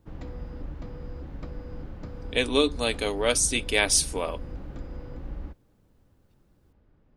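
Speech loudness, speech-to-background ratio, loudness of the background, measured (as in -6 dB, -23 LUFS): -24.0 LUFS, 16.5 dB, -40.5 LUFS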